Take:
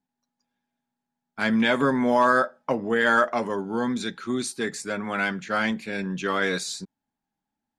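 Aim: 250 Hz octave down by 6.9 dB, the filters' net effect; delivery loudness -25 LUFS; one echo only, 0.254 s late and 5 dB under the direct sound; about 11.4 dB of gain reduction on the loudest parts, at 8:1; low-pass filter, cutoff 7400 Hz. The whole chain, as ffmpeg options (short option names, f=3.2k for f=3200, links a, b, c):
-af "lowpass=7.4k,equalizer=f=250:t=o:g=-8,acompressor=threshold=-28dB:ratio=8,aecho=1:1:254:0.562,volume=7dB"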